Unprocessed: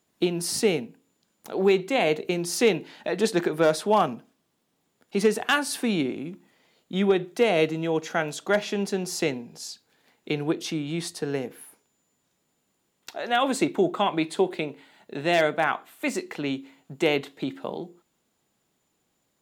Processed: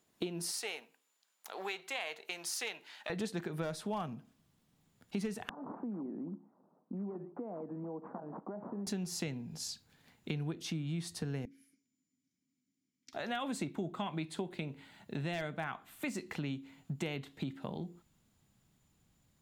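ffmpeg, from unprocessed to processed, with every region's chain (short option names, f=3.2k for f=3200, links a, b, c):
-filter_complex "[0:a]asettb=1/sr,asplit=3[a][b][c];[a]atrim=end=0.514[d];[b]atrim=start=0.51:end=3.1,asetpts=PTS-STARTPTS,afade=t=in:d=0.004:c=qsin,afade=t=out:st=2.586:d=0.004:c=qsin,aeval=exprs='if(lt(val(0),0),0.708*val(0),val(0))':c=same,highpass=870[e];[c]atrim=start=3.096[f];[d][e]acrossfade=d=0.004:c1=hsin:c2=qsin[g];[g][f]acrossfade=d=0.004:c1=qsin:c2=hsin,asettb=1/sr,asplit=3[h][i][j];[h]atrim=end=5.494[k];[i]atrim=start=5.49:end=8.87,asetpts=PTS-STARTPTS,afade=t=in:d=0.004:c=qsin,afade=t=out:st=3.376:d=0.004:c=qsin,acompressor=threshold=-34dB:ratio=5:attack=3.2:release=140:knee=1:detection=peak,acrusher=samples=14:mix=1:aa=0.000001:lfo=1:lforange=14:lforate=1.9,asuperpass=centerf=470:order=8:qfactor=0.54[l];[j]atrim=start=8.866[m];[k][l]acrossfade=d=0.004:c1=hsin:c2=qsin[n];[n][m]acrossfade=d=0.004:c1=qsin:c2=hsin,asettb=1/sr,asplit=3[o][p][q];[o]atrim=end=11.454[r];[p]atrim=start=11.45:end=13.13,asetpts=PTS-STARTPTS,afade=t=in:d=0.004:c=qsin,afade=t=out:st=1.676:d=0.004:c=qsin,asplit=3[s][t][u];[s]bandpass=f=270:t=q:w=8,volume=0dB[v];[t]bandpass=f=2.29k:t=q:w=8,volume=-6dB[w];[u]bandpass=f=3.01k:t=q:w=8,volume=-9dB[x];[v][w][x]amix=inputs=3:normalize=0,highshelf=f=4.3k:t=q:w=3:g=9[y];[q]atrim=start=13.126[z];[r][y]acrossfade=d=0.004:c1=hsin:c2=qsin[aa];[aa][z]acrossfade=d=0.004:c1=qsin:c2=hsin,asubboost=boost=7:cutoff=150,acompressor=threshold=-34dB:ratio=4,volume=-2.5dB"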